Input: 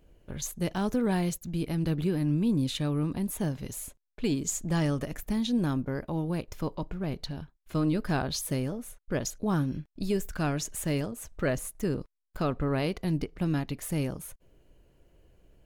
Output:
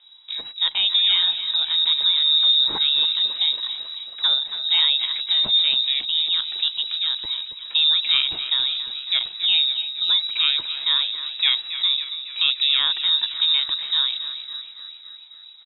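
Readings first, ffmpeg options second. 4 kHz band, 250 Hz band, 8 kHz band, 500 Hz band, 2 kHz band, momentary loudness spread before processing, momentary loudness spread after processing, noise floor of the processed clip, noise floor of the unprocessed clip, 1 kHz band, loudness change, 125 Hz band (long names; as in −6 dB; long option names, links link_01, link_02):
+28.0 dB, below −20 dB, below −40 dB, below −15 dB, +9.5 dB, 9 LU, 11 LU, −43 dBFS, −75 dBFS, −1.0 dB, +12.5 dB, below −25 dB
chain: -filter_complex "[0:a]asplit=9[link_01][link_02][link_03][link_04][link_05][link_06][link_07][link_08][link_09];[link_02]adelay=275,afreqshift=-51,volume=-11dB[link_10];[link_03]adelay=550,afreqshift=-102,volume=-14.9dB[link_11];[link_04]adelay=825,afreqshift=-153,volume=-18.8dB[link_12];[link_05]adelay=1100,afreqshift=-204,volume=-22.6dB[link_13];[link_06]adelay=1375,afreqshift=-255,volume=-26.5dB[link_14];[link_07]adelay=1650,afreqshift=-306,volume=-30.4dB[link_15];[link_08]adelay=1925,afreqshift=-357,volume=-34.3dB[link_16];[link_09]adelay=2200,afreqshift=-408,volume=-38.1dB[link_17];[link_01][link_10][link_11][link_12][link_13][link_14][link_15][link_16][link_17]amix=inputs=9:normalize=0,lowpass=frequency=3300:width_type=q:width=0.5098,lowpass=frequency=3300:width_type=q:width=0.6013,lowpass=frequency=3300:width_type=q:width=0.9,lowpass=frequency=3300:width_type=q:width=2.563,afreqshift=-3900,volume=8dB"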